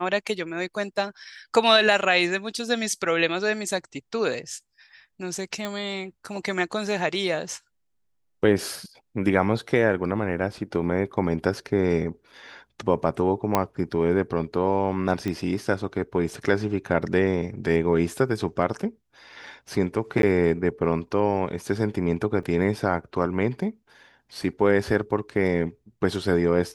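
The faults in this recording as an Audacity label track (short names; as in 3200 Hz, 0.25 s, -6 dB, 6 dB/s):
5.650000	5.650000	pop -15 dBFS
13.550000	13.550000	pop -6 dBFS
15.280000	15.280000	pop -16 dBFS
20.220000	20.230000	gap 12 ms
22.430000	22.430000	gap 3.4 ms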